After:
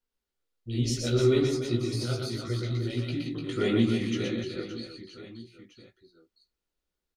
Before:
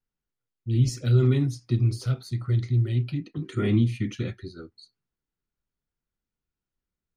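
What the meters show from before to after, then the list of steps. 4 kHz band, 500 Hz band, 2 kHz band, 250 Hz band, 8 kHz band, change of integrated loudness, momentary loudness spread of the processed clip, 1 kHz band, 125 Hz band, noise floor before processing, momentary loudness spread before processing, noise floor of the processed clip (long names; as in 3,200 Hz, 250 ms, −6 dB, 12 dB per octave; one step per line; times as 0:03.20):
+6.5 dB, +5.0 dB, +3.5 dB, +0.5 dB, can't be measured, −3.5 dB, 20 LU, +2.5 dB, −8.0 dB, below −85 dBFS, 12 LU, below −85 dBFS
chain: octave-band graphic EQ 125/500/4,000 Hz −12/+5/+5 dB
chorus effect 2.7 Hz, delay 16 ms, depth 2.3 ms
on a send: reverse bouncing-ball delay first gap 120 ms, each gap 1.5×, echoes 5
on the sum: level +3 dB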